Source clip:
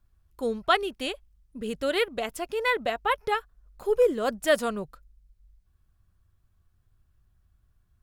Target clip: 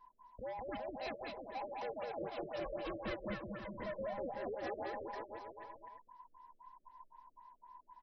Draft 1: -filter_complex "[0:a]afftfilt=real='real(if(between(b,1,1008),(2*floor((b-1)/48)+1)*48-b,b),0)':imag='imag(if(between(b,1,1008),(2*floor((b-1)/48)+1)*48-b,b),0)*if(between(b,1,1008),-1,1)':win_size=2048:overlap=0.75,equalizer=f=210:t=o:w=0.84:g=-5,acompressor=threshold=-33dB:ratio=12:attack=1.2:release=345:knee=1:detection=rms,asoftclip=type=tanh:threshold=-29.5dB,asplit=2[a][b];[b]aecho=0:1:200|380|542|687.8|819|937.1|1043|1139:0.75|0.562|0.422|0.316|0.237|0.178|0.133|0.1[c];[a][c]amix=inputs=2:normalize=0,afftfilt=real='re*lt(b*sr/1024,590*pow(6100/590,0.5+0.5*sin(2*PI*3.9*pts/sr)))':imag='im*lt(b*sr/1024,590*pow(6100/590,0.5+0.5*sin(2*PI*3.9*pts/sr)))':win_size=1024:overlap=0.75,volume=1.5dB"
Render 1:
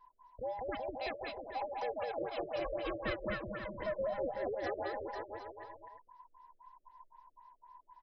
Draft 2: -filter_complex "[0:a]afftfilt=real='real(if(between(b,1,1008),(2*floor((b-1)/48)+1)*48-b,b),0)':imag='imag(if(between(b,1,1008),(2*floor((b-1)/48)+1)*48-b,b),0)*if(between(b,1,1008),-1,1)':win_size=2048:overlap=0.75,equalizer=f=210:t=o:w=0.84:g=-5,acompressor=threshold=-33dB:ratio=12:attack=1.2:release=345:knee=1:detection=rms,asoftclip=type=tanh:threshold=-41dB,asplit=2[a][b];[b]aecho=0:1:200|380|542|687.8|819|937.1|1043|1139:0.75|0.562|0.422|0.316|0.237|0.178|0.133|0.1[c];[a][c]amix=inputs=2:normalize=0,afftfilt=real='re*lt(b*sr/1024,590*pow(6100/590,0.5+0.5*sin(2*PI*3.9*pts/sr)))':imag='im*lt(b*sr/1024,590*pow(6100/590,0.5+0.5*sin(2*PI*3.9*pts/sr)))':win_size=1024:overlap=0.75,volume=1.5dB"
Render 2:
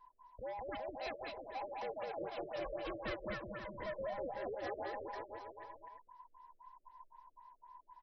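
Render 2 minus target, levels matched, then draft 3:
250 Hz band -3.0 dB
-filter_complex "[0:a]afftfilt=real='real(if(between(b,1,1008),(2*floor((b-1)/48)+1)*48-b,b),0)':imag='imag(if(between(b,1,1008),(2*floor((b-1)/48)+1)*48-b,b),0)*if(between(b,1,1008),-1,1)':win_size=2048:overlap=0.75,equalizer=f=210:t=o:w=0.84:g=6,acompressor=threshold=-33dB:ratio=12:attack=1.2:release=345:knee=1:detection=rms,asoftclip=type=tanh:threshold=-41dB,asplit=2[a][b];[b]aecho=0:1:200|380|542|687.8|819|937.1|1043|1139:0.75|0.562|0.422|0.316|0.237|0.178|0.133|0.1[c];[a][c]amix=inputs=2:normalize=0,afftfilt=real='re*lt(b*sr/1024,590*pow(6100/590,0.5+0.5*sin(2*PI*3.9*pts/sr)))':imag='im*lt(b*sr/1024,590*pow(6100/590,0.5+0.5*sin(2*PI*3.9*pts/sr)))':win_size=1024:overlap=0.75,volume=1.5dB"

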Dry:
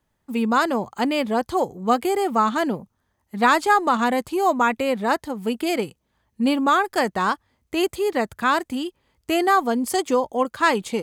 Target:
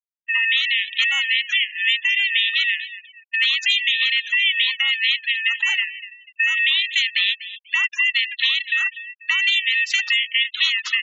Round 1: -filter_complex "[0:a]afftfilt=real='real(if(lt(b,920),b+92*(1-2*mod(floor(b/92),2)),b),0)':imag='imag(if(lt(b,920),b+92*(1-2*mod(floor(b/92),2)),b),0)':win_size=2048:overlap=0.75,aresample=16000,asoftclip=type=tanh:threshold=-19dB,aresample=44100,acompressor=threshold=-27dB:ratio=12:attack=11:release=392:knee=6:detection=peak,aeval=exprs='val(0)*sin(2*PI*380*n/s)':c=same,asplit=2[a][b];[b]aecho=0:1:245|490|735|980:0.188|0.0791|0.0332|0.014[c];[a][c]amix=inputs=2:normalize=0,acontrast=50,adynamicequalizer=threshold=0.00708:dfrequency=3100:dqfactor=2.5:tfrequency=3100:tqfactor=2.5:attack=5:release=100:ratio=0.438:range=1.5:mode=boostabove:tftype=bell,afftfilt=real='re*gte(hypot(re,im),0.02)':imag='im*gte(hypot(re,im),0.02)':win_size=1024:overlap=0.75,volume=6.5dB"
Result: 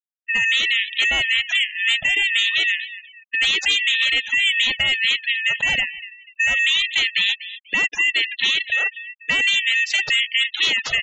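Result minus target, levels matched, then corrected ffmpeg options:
soft clip: distortion +8 dB; 1000 Hz band +3.5 dB
-filter_complex "[0:a]afftfilt=real='real(if(lt(b,920),b+92*(1-2*mod(floor(b/92),2)),b),0)':imag='imag(if(lt(b,920),b+92*(1-2*mod(floor(b/92),2)),b),0)':win_size=2048:overlap=0.75,aresample=16000,asoftclip=type=tanh:threshold=-12dB,aresample=44100,acompressor=threshold=-27dB:ratio=12:attack=11:release=392:knee=6:detection=peak,aeval=exprs='val(0)*sin(2*PI*380*n/s)':c=same,asplit=2[a][b];[b]aecho=0:1:245|490|735|980:0.188|0.0791|0.0332|0.014[c];[a][c]amix=inputs=2:normalize=0,acontrast=50,adynamicequalizer=threshold=0.00708:dfrequency=3100:dqfactor=2.5:tfrequency=3100:tqfactor=2.5:attack=5:release=100:ratio=0.438:range=1.5:mode=boostabove:tftype=bell,highpass=f=980:w=0.5412,highpass=f=980:w=1.3066,afftfilt=real='re*gte(hypot(re,im),0.02)':imag='im*gte(hypot(re,im),0.02)':win_size=1024:overlap=0.75,volume=6.5dB"

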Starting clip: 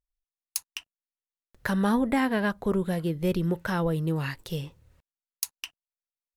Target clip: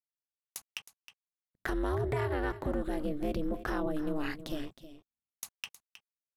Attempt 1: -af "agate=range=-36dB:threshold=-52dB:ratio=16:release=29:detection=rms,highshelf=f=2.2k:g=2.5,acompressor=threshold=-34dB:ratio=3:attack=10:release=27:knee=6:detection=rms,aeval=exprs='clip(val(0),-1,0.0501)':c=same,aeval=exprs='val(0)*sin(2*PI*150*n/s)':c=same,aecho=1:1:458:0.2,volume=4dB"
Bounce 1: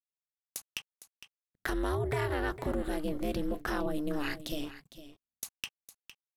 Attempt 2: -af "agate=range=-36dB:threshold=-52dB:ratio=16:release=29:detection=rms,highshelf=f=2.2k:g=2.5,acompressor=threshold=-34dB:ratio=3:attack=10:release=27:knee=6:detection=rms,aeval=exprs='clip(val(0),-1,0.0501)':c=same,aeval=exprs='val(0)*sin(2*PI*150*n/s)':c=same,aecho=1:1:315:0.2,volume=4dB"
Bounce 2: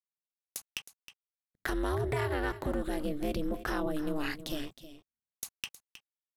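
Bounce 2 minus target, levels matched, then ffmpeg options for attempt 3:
4000 Hz band +3.5 dB
-af "agate=range=-36dB:threshold=-52dB:ratio=16:release=29:detection=rms,highshelf=f=2.2k:g=-5.5,acompressor=threshold=-34dB:ratio=3:attack=10:release=27:knee=6:detection=rms,aeval=exprs='clip(val(0),-1,0.0501)':c=same,aeval=exprs='val(0)*sin(2*PI*150*n/s)':c=same,aecho=1:1:315:0.2,volume=4dB"

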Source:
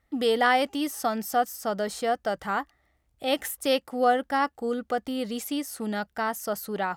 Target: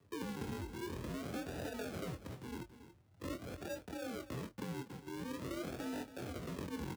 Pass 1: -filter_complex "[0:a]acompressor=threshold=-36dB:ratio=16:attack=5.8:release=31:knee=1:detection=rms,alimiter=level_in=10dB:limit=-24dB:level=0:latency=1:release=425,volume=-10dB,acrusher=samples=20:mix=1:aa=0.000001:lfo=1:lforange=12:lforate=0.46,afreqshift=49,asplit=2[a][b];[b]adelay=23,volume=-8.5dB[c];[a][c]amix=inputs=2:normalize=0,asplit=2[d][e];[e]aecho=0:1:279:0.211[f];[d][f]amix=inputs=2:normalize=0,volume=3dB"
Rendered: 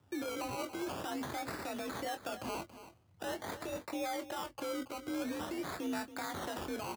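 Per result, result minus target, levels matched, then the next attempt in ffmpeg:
decimation with a swept rate: distortion -17 dB; compressor: peak gain reduction -7.5 dB
-filter_complex "[0:a]acompressor=threshold=-36dB:ratio=16:attack=5.8:release=31:knee=1:detection=rms,alimiter=level_in=10dB:limit=-24dB:level=0:latency=1:release=425,volume=-10dB,acrusher=samples=59:mix=1:aa=0.000001:lfo=1:lforange=35.4:lforate=0.46,afreqshift=49,asplit=2[a][b];[b]adelay=23,volume=-8.5dB[c];[a][c]amix=inputs=2:normalize=0,asplit=2[d][e];[e]aecho=0:1:279:0.211[f];[d][f]amix=inputs=2:normalize=0,volume=3dB"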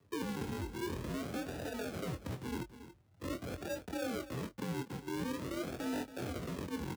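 compressor: peak gain reduction -7.5 dB
-filter_complex "[0:a]acompressor=threshold=-44dB:ratio=16:attack=5.8:release=31:knee=1:detection=rms,alimiter=level_in=10dB:limit=-24dB:level=0:latency=1:release=425,volume=-10dB,acrusher=samples=59:mix=1:aa=0.000001:lfo=1:lforange=35.4:lforate=0.46,afreqshift=49,asplit=2[a][b];[b]adelay=23,volume=-8.5dB[c];[a][c]amix=inputs=2:normalize=0,asplit=2[d][e];[e]aecho=0:1:279:0.211[f];[d][f]amix=inputs=2:normalize=0,volume=3dB"

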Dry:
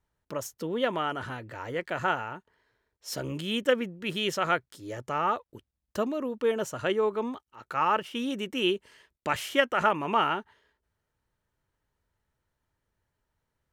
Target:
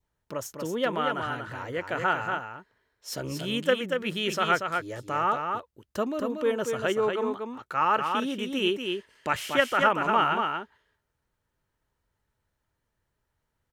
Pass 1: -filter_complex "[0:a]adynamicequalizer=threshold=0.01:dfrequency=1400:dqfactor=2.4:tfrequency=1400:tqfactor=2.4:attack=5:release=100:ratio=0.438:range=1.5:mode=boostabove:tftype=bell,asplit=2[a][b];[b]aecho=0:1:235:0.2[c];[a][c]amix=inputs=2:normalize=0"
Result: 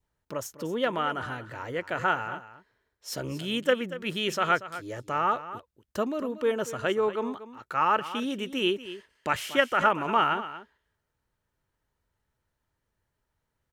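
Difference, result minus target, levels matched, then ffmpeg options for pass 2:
echo-to-direct -9 dB
-filter_complex "[0:a]adynamicequalizer=threshold=0.01:dfrequency=1400:dqfactor=2.4:tfrequency=1400:tqfactor=2.4:attack=5:release=100:ratio=0.438:range=1.5:mode=boostabove:tftype=bell,asplit=2[a][b];[b]aecho=0:1:235:0.562[c];[a][c]amix=inputs=2:normalize=0"

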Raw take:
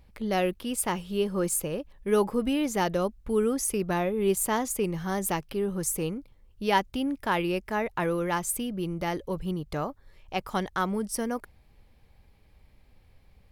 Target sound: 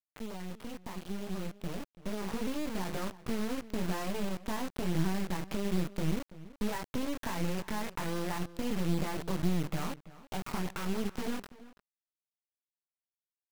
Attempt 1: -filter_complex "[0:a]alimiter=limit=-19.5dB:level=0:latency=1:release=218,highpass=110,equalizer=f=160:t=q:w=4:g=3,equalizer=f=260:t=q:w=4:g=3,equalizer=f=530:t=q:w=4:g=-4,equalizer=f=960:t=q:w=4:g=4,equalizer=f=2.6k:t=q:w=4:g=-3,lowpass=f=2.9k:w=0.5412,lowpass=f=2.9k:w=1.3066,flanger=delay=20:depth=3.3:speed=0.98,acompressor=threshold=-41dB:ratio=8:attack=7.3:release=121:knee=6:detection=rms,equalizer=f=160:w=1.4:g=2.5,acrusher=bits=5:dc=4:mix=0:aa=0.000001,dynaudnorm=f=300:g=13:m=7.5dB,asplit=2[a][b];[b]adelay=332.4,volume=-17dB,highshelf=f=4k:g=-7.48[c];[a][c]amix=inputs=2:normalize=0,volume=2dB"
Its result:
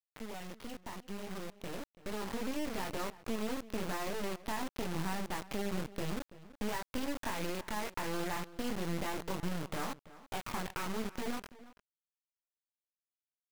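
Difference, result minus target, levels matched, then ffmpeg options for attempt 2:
125 Hz band -4.0 dB
-filter_complex "[0:a]alimiter=limit=-19.5dB:level=0:latency=1:release=218,highpass=110,equalizer=f=160:t=q:w=4:g=3,equalizer=f=260:t=q:w=4:g=3,equalizer=f=530:t=q:w=4:g=-4,equalizer=f=960:t=q:w=4:g=4,equalizer=f=2.6k:t=q:w=4:g=-3,lowpass=f=2.9k:w=0.5412,lowpass=f=2.9k:w=1.3066,flanger=delay=20:depth=3.3:speed=0.98,acompressor=threshold=-41dB:ratio=8:attack=7.3:release=121:knee=6:detection=rms,equalizer=f=160:w=1.4:g=11,acrusher=bits=5:dc=4:mix=0:aa=0.000001,dynaudnorm=f=300:g=13:m=7.5dB,asplit=2[a][b];[b]adelay=332.4,volume=-17dB,highshelf=f=4k:g=-7.48[c];[a][c]amix=inputs=2:normalize=0,volume=2dB"

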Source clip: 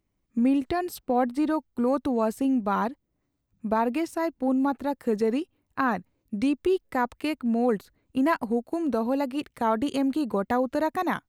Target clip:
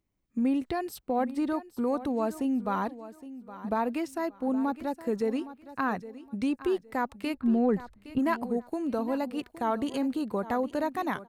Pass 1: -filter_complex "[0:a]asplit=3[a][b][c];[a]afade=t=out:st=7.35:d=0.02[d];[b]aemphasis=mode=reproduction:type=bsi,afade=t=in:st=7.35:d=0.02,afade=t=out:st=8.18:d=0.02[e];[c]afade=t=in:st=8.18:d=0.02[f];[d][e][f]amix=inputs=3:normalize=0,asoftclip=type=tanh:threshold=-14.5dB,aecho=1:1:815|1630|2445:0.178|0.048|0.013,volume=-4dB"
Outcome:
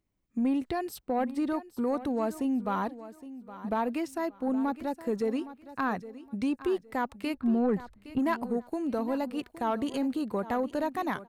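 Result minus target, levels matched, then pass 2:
soft clip: distortion +17 dB
-filter_complex "[0:a]asplit=3[a][b][c];[a]afade=t=out:st=7.35:d=0.02[d];[b]aemphasis=mode=reproduction:type=bsi,afade=t=in:st=7.35:d=0.02,afade=t=out:st=8.18:d=0.02[e];[c]afade=t=in:st=8.18:d=0.02[f];[d][e][f]amix=inputs=3:normalize=0,asoftclip=type=tanh:threshold=-5dB,aecho=1:1:815|1630|2445:0.178|0.048|0.013,volume=-4dB"

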